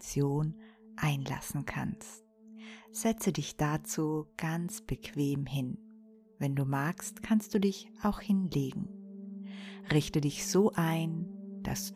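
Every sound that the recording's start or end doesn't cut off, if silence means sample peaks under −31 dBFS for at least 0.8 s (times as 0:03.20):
0:02.97–0:08.83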